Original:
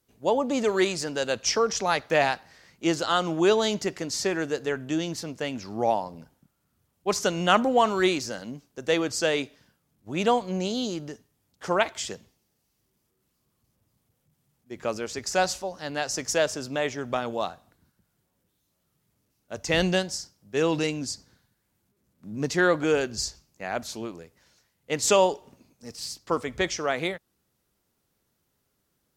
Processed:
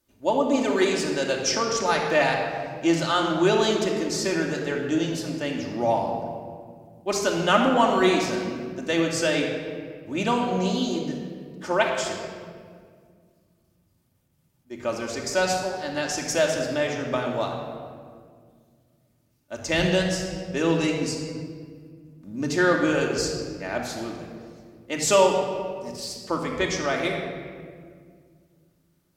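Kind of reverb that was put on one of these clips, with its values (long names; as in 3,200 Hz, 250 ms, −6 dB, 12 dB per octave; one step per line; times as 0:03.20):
rectangular room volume 3,300 cubic metres, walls mixed, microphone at 2.6 metres
level −1.5 dB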